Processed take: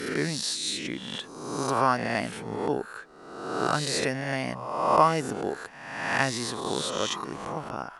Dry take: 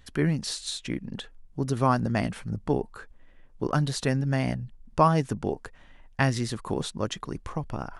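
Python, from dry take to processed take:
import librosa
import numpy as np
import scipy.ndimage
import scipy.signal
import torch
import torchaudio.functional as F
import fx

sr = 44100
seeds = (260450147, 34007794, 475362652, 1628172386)

y = fx.spec_swells(x, sr, rise_s=1.13)
y = fx.highpass(y, sr, hz=420.0, slope=6)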